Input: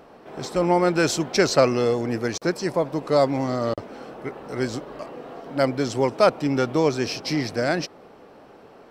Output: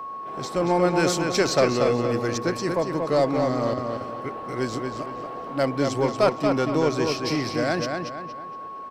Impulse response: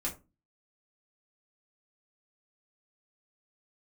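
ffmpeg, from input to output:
-filter_complex "[0:a]aeval=exprs='val(0)+0.0282*sin(2*PI*1100*n/s)':c=same,asplit=2[s0][s1];[s1]asoftclip=type=tanh:threshold=0.126,volume=0.708[s2];[s0][s2]amix=inputs=2:normalize=0,asplit=2[s3][s4];[s4]adelay=233,lowpass=f=4700:p=1,volume=0.596,asplit=2[s5][s6];[s6]adelay=233,lowpass=f=4700:p=1,volume=0.39,asplit=2[s7][s8];[s8]adelay=233,lowpass=f=4700:p=1,volume=0.39,asplit=2[s9][s10];[s10]adelay=233,lowpass=f=4700:p=1,volume=0.39,asplit=2[s11][s12];[s12]adelay=233,lowpass=f=4700:p=1,volume=0.39[s13];[s3][s5][s7][s9][s11][s13]amix=inputs=6:normalize=0,volume=0.531"

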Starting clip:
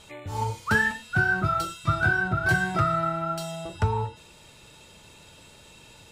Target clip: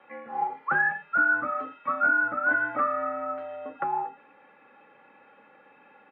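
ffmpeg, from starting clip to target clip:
-filter_complex "[0:a]aemphasis=mode=production:type=riaa,aecho=1:1:3.4:0.51,acrossover=split=310|1500[s0][s1][s2];[s2]asoftclip=type=tanh:threshold=0.0473[s3];[s0][s1][s3]amix=inputs=3:normalize=0,highpass=f=260:t=q:w=0.5412,highpass=f=260:t=q:w=1.307,lowpass=f=2000:t=q:w=0.5176,lowpass=f=2000:t=q:w=0.7071,lowpass=f=2000:t=q:w=1.932,afreqshift=-65"

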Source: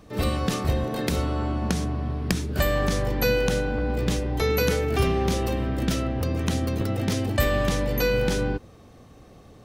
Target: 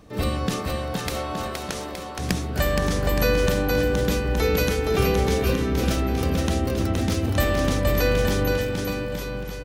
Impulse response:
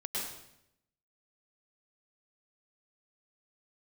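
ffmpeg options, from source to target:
-filter_complex "[0:a]asettb=1/sr,asplit=3[s0][s1][s2];[s0]atrim=end=0.624[s3];[s1]atrim=start=0.62:end=2.19,asetpts=PTS-STARTPTS,afade=t=in:d=0.004:c=qsin,afade=t=out:st=1.566:d=0.004:c=qsin,highpass=560[s4];[s2]atrim=start=2.186[s5];[s3][s4]acrossfade=d=0.004:c1=hsin:c2=qsin[s6];[s6][s5]acrossfade=d=0.004:c1=qsin:c2=hsin,aecho=1:1:470|869.5|1209|1498|1743:0.631|0.398|0.251|0.158|0.1"

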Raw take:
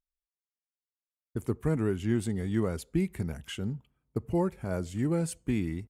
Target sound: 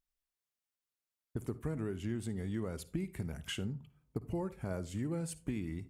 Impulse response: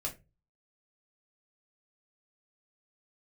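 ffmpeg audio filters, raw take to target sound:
-filter_complex "[0:a]acompressor=threshold=0.0126:ratio=4,asplit=2[s0][s1];[1:a]atrim=start_sample=2205,adelay=52[s2];[s1][s2]afir=irnorm=-1:irlink=0,volume=0.133[s3];[s0][s3]amix=inputs=2:normalize=0,volume=1.26"

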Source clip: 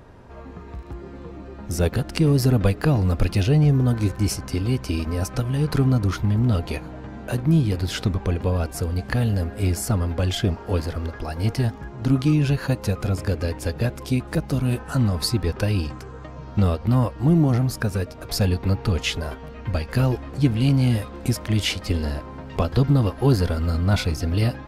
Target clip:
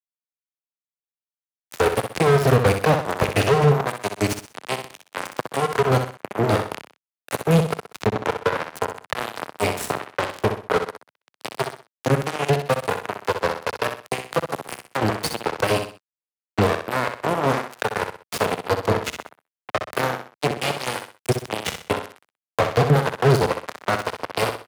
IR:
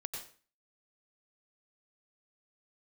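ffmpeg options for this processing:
-filter_complex "[0:a]equalizer=f=5300:w=2.4:g=-6.5,flanger=delay=4.7:depth=4.9:regen=35:speed=1.3:shape=sinusoidal,firequalizer=gain_entry='entry(160,0);entry(290,-13);entry(420,8);entry(810,3);entry(3500,-1);entry(5900,9)':delay=0.05:min_phase=1,acrusher=bits=2:mix=0:aa=0.5,asplit=2[s0][s1];[s1]highpass=f=720:p=1,volume=17.8,asoftclip=type=tanh:threshold=0.335[s2];[s0][s2]amix=inputs=2:normalize=0,lowpass=f=3300:p=1,volume=0.501,highpass=87,aecho=1:1:63|126|189:0.398|0.115|0.0335,acrossover=split=170[s3][s4];[s4]acompressor=threshold=0.0224:ratio=1.5[s5];[s3][s5]amix=inputs=2:normalize=0,volume=2"

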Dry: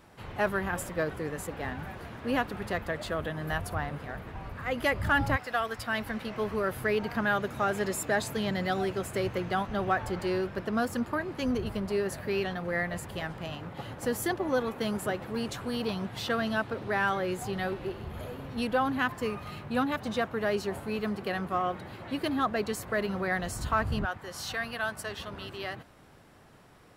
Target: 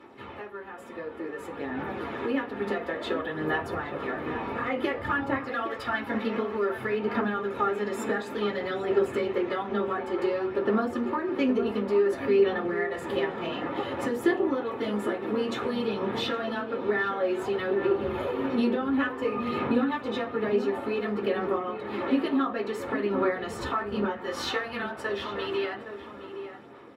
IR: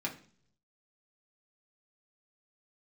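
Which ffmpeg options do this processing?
-filter_complex "[0:a]highpass=62,bass=f=250:g=-9,treble=f=4000:g=-13,acompressor=threshold=0.00631:ratio=5,aphaser=in_gain=1:out_gain=1:delay=4.5:decay=0.38:speed=0.56:type=sinusoidal,dynaudnorm=f=710:g=5:m=3.16,asplit=2[s0][s1];[s1]adelay=816.3,volume=0.355,highshelf=f=4000:g=-18.4[s2];[s0][s2]amix=inputs=2:normalize=0[s3];[1:a]atrim=start_sample=2205,asetrate=66150,aresample=44100[s4];[s3][s4]afir=irnorm=-1:irlink=0,volume=1.78"

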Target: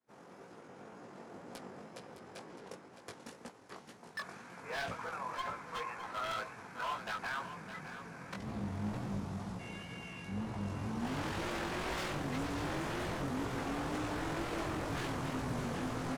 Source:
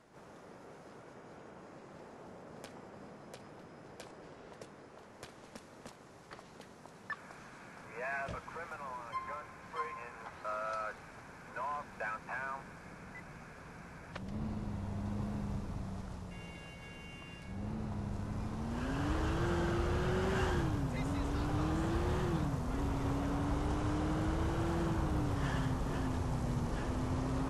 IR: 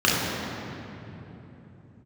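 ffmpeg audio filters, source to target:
-af "agate=range=0.0224:threshold=0.00355:ratio=3:detection=peak,highpass=120,bandreject=f=600:w=13,bandreject=f=159:t=h:w=4,bandreject=f=318:t=h:w=4,bandreject=f=477:t=h:w=4,bandreject=f=636:t=h:w=4,bandreject=f=795:t=h:w=4,bandreject=f=954:t=h:w=4,bandreject=f=1113:t=h:w=4,bandreject=f=1272:t=h:w=4,bandreject=f=1431:t=h:w=4,bandreject=f=1590:t=h:w=4,aeval=exprs='0.015*(abs(mod(val(0)/0.015+3,4)-2)-1)':c=same,atempo=1.7,flanger=delay=16.5:depth=5.4:speed=2,aecho=1:1:612:0.299,volume=2.24"

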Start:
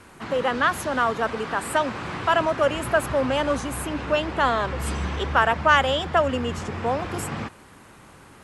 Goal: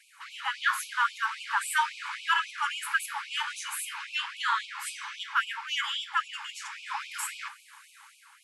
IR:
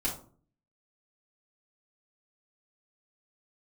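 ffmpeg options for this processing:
-filter_complex "[0:a]asplit=2[s0][s1];[1:a]atrim=start_sample=2205[s2];[s1][s2]afir=irnorm=-1:irlink=0,volume=0.447[s3];[s0][s3]amix=inputs=2:normalize=0,dynaudnorm=f=100:g=9:m=1.68,afftfilt=real='re*gte(b*sr/1024,810*pow(2300/810,0.5+0.5*sin(2*PI*3.7*pts/sr)))':imag='im*gte(b*sr/1024,810*pow(2300/810,0.5+0.5*sin(2*PI*3.7*pts/sr)))':win_size=1024:overlap=0.75,volume=0.473"

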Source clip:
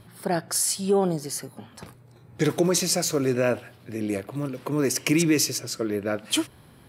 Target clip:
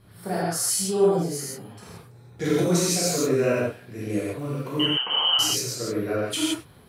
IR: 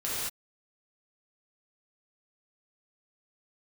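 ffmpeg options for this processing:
-filter_complex "[0:a]asettb=1/sr,asplit=3[s0][s1][s2];[s0]atrim=end=4.794[s3];[s1]atrim=start=4.79:end=5.39,asetpts=PTS-STARTPTS,afade=t=in:d=0.004:c=qsin,afade=t=out:st=0.596:d=0.004:c=qsin,lowpass=f=2800:t=q:w=0.5098,lowpass=f=2800:t=q:w=0.6013,lowpass=f=2800:t=q:w=0.9,lowpass=f=2800:t=q:w=2.563,afreqshift=-3300[s4];[s2]atrim=start=5.386[s5];[s3][s4]acrossfade=d=0.004:c1=hsin:c2=qsin[s6];[s6][s5]acrossfade=d=0.004:c1=qsin:c2=hsin[s7];[1:a]atrim=start_sample=2205,afade=t=out:st=0.23:d=0.01,atrim=end_sample=10584[s8];[s7][s8]afir=irnorm=-1:irlink=0,volume=0.501"

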